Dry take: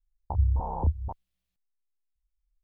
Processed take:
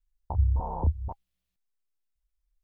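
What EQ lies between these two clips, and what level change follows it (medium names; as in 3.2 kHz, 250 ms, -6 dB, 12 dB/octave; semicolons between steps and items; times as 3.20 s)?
band-stop 810 Hz, Q 18; 0.0 dB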